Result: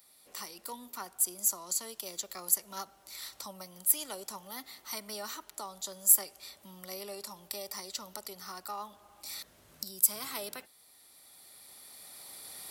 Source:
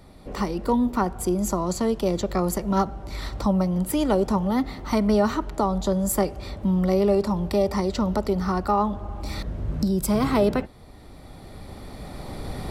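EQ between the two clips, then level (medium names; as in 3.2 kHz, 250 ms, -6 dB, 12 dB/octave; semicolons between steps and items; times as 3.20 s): differentiator; treble shelf 10 kHz +8.5 dB; 0.0 dB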